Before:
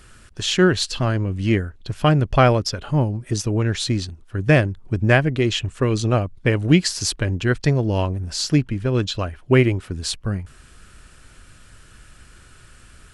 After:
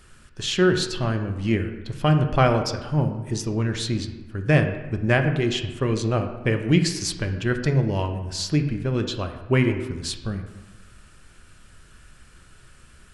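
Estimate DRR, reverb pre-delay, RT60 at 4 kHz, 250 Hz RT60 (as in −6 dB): 5.5 dB, 5 ms, 0.75 s, 1.3 s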